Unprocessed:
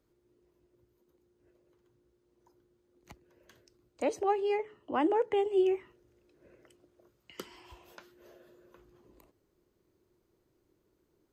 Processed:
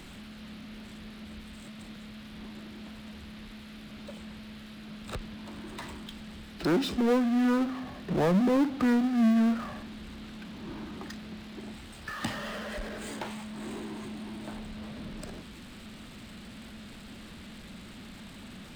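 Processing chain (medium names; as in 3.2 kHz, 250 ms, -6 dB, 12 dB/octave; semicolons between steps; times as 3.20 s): wide varispeed 0.604×; power-law waveshaper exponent 0.5; band noise 1.1–4.2 kHz -54 dBFS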